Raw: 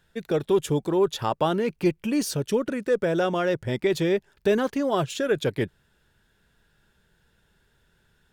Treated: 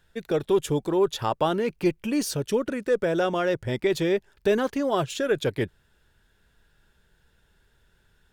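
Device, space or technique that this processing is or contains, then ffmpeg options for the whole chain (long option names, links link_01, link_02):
low shelf boost with a cut just above: -af "lowshelf=frequency=68:gain=6,equalizer=frequency=170:width_type=o:width=1.1:gain=-3.5"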